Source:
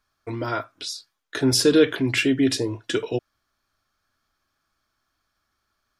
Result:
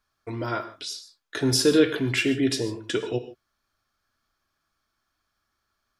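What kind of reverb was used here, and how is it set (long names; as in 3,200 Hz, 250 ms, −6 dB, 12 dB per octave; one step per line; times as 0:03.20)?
reverb whose tail is shaped and stops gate 170 ms flat, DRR 10 dB
level −2.5 dB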